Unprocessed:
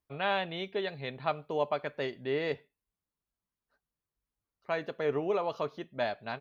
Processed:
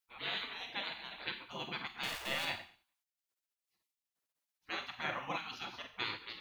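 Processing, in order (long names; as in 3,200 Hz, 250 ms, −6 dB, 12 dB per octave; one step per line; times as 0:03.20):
0:02.03–0:02.45: converter with a step at zero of −39 dBFS
four-comb reverb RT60 0.47 s, combs from 32 ms, DRR 4.5 dB
gate on every frequency bin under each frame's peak −20 dB weak
level +4.5 dB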